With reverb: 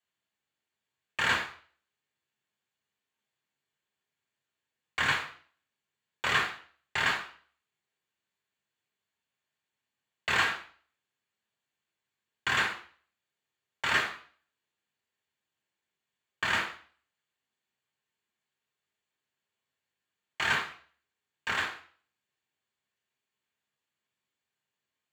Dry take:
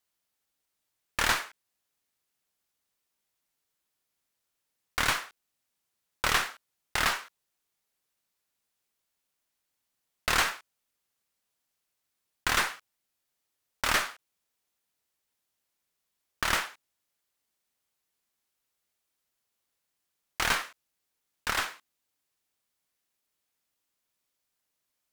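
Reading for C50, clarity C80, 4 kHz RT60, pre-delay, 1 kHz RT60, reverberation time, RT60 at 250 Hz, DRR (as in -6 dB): 11.0 dB, 15.0 dB, 0.45 s, 3 ms, 0.45 s, 0.45 s, 0.45 s, -2.5 dB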